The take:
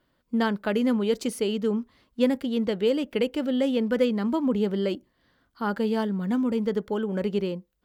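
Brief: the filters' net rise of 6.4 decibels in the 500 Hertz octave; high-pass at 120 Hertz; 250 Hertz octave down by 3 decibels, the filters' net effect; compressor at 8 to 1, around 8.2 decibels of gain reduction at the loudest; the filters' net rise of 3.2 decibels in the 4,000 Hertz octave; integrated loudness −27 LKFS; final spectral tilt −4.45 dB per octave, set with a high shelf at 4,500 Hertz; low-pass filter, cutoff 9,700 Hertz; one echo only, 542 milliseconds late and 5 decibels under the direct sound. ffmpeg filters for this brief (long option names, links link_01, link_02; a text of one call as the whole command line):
ffmpeg -i in.wav -af "highpass=120,lowpass=9700,equalizer=frequency=250:width_type=o:gain=-5,equalizer=frequency=500:width_type=o:gain=8.5,equalizer=frequency=4000:width_type=o:gain=8,highshelf=frequency=4500:gain=-7,acompressor=threshold=-20dB:ratio=8,aecho=1:1:542:0.562,volume=-1dB" out.wav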